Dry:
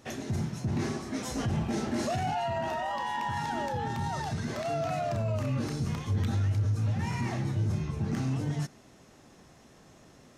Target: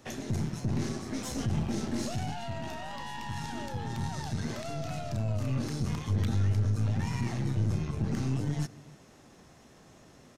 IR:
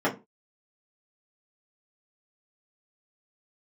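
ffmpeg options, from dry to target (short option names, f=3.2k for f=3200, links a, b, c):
-filter_complex "[0:a]asplit=2[a][b];[b]adelay=297.4,volume=-21dB,highshelf=f=4k:g=-6.69[c];[a][c]amix=inputs=2:normalize=0,aeval=exprs='0.106*(cos(1*acos(clip(val(0)/0.106,-1,1)))-cos(1*PI/2))+0.0119*(cos(4*acos(clip(val(0)/0.106,-1,1)))-cos(4*PI/2))+0.00188*(cos(8*acos(clip(val(0)/0.106,-1,1)))-cos(8*PI/2))':c=same,acrossover=split=310|3000[d][e][f];[e]acompressor=threshold=-40dB:ratio=6[g];[d][g][f]amix=inputs=3:normalize=0"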